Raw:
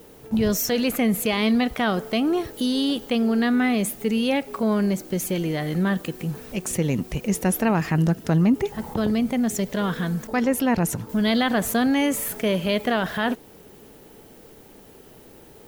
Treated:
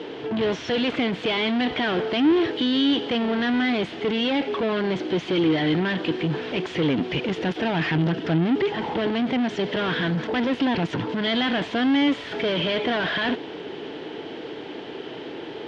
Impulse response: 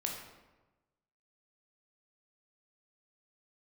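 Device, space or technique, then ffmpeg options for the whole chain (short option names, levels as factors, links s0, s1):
overdrive pedal into a guitar cabinet: -filter_complex "[0:a]asplit=2[s0][s1];[s1]highpass=f=720:p=1,volume=35.5,asoftclip=type=tanh:threshold=0.282[s2];[s0][s2]amix=inputs=2:normalize=0,lowpass=f=1300:p=1,volume=0.501,highpass=100,equalizer=f=210:t=q:w=4:g=-7,equalizer=f=310:t=q:w=4:g=5,equalizer=f=560:t=q:w=4:g=-6,equalizer=f=800:t=q:w=4:g=-4,equalizer=f=1200:t=q:w=4:g=-7,equalizer=f=3200:t=q:w=4:g=8,lowpass=f=4500:w=0.5412,lowpass=f=4500:w=1.3066,volume=0.75"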